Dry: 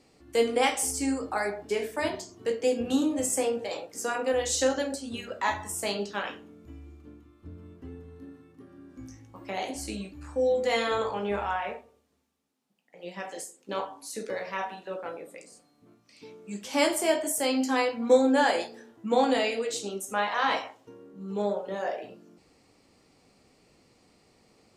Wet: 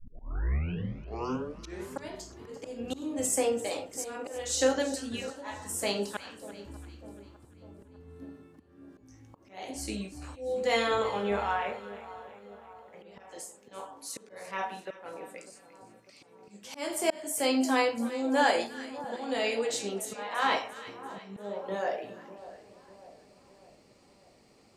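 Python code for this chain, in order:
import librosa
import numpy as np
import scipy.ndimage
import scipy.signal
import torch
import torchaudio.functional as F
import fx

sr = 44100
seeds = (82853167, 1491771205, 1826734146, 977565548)

y = fx.tape_start_head(x, sr, length_s=2.12)
y = fx.auto_swell(y, sr, attack_ms=360.0)
y = fx.echo_split(y, sr, split_hz=1200.0, low_ms=598, high_ms=342, feedback_pct=52, wet_db=-15)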